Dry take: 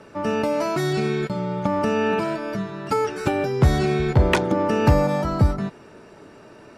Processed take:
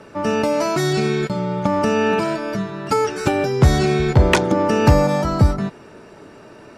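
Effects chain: dynamic bell 6.4 kHz, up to +5 dB, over -47 dBFS, Q 0.99; trim +3.5 dB

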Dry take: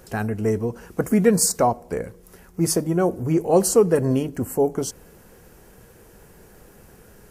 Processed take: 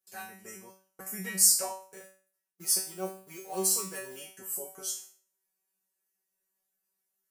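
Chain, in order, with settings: 1.88–4.19 s: companding laws mixed up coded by A; tilt EQ +4.5 dB/octave; gate -34 dBFS, range -26 dB; dynamic bell 3.1 kHz, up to +5 dB, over -34 dBFS, Q 1.4; feedback comb 190 Hz, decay 0.43 s, harmonics all, mix 100%

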